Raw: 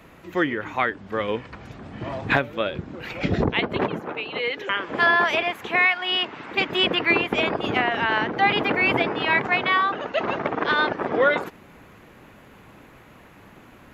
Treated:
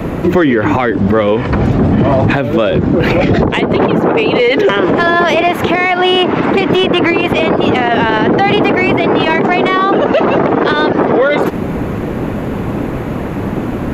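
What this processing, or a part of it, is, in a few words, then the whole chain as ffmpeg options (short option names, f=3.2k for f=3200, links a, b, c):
mastering chain: -filter_complex "[0:a]asettb=1/sr,asplit=3[a][b][c];[a]atrim=end=9.284[d];[b]atrim=start=9.28:end=9.98,asetpts=PTS-STARTPTS,afade=t=in:d=0.004:c=qsin,afade=t=out:st=0.696:d=0.004:c=qsin,highpass=180[e];[c]atrim=start=9.976[f];[d][e]acrossfade=d=0.004:c1=hsin:c2=qsin[g];[g][f]acrossfade=d=0.004:c1=qsin:c2=hsin,equalizer=f=390:t=o:w=2.6:g=3.5,acrossover=split=740|2700[h][i][j];[h]acompressor=threshold=-31dB:ratio=4[k];[i]acompressor=threshold=-29dB:ratio=4[l];[j]acompressor=threshold=-31dB:ratio=4[m];[k][l][m]amix=inputs=3:normalize=0,acompressor=threshold=-28dB:ratio=2.5,asoftclip=type=tanh:threshold=-19dB,tiltshelf=f=790:g=7,alimiter=level_in=26.5dB:limit=-1dB:release=50:level=0:latency=1,volume=-2dB"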